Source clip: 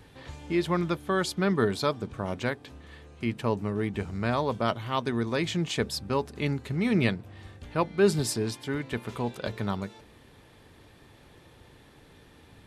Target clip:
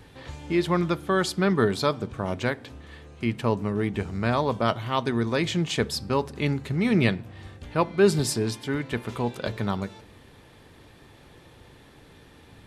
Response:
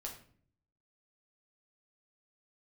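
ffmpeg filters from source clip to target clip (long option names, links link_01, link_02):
-filter_complex "[0:a]asplit=2[link_01][link_02];[link_02]lowpass=11000[link_03];[1:a]atrim=start_sample=2205[link_04];[link_03][link_04]afir=irnorm=-1:irlink=0,volume=-12dB[link_05];[link_01][link_05]amix=inputs=2:normalize=0,volume=2dB"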